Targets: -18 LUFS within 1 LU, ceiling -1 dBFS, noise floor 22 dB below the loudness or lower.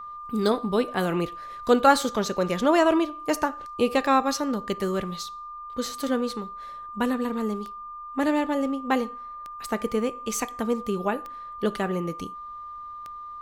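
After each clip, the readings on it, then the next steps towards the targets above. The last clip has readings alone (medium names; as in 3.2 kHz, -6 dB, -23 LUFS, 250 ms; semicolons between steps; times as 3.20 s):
clicks found 8; steady tone 1.2 kHz; tone level -36 dBFS; loudness -26.0 LUFS; peak level -4.5 dBFS; loudness target -18.0 LUFS
-> de-click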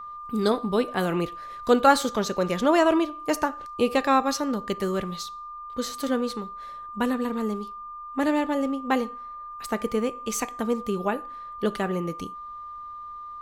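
clicks found 0; steady tone 1.2 kHz; tone level -36 dBFS
-> band-stop 1.2 kHz, Q 30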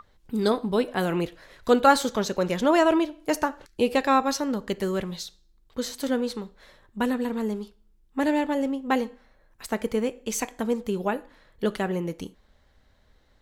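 steady tone not found; loudness -26.0 LUFS; peak level -5.0 dBFS; loudness target -18.0 LUFS
-> trim +8 dB; peak limiter -1 dBFS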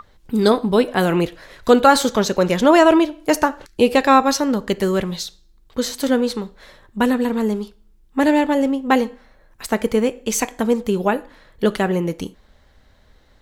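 loudness -18.5 LUFS; peak level -1.0 dBFS; noise floor -54 dBFS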